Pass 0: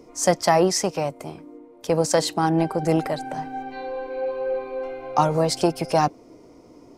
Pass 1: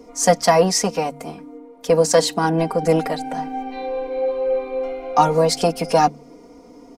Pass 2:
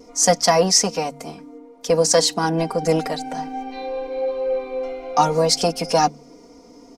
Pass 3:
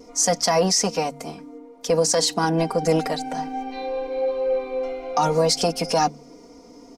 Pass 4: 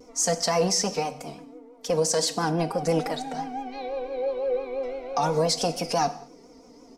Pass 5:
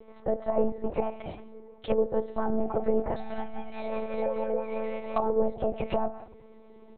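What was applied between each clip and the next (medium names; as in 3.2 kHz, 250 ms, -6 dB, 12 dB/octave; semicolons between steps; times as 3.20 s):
comb 4.2 ms, depth 91%; de-hum 73.47 Hz, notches 3; trim +1.5 dB
peaking EQ 5.6 kHz +8 dB 1.1 oct; vibrato 0.56 Hz 11 cents; trim -2 dB
peak limiter -10 dBFS, peak gain reduction 7.5 dB
vibrato 5.9 Hz 90 cents; reverberation, pre-delay 3 ms, DRR 11 dB; trim -4.5 dB
low-pass that closes with the level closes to 660 Hz, closed at -21 dBFS; monotone LPC vocoder at 8 kHz 220 Hz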